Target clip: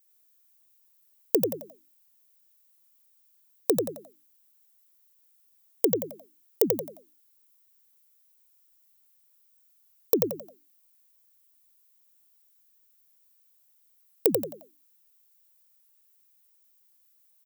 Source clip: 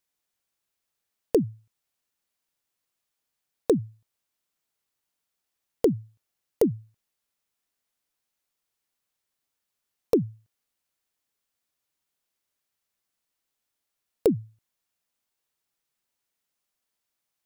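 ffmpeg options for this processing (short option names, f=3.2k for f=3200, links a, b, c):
-filter_complex "[0:a]aemphasis=mode=production:type=bsi,asplit=2[a][b];[b]asplit=4[c][d][e][f];[c]adelay=88,afreqshift=49,volume=-4dB[g];[d]adelay=176,afreqshift=98,volume=-13.1dB[h];[e]adelay=264,afreqshift=147,volume=-22.2dB[i];[f]adelay=352,afreqshift=196,volume=-31.4dB[j];[g][h][i][j]amix=inputs=4:normalize=0[k];[a][k]amix=inputs=2:normalize=0,volume=-1.5dB"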